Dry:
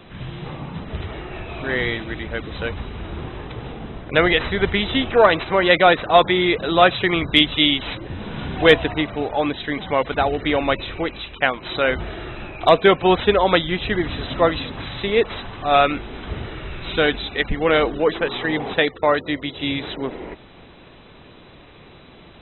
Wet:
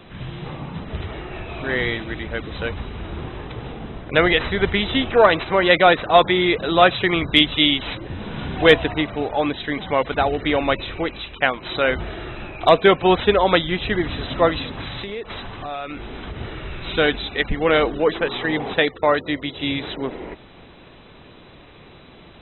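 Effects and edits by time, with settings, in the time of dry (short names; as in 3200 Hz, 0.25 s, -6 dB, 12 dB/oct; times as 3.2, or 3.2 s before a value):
15–16.41 compressor, threshold -27 dBFS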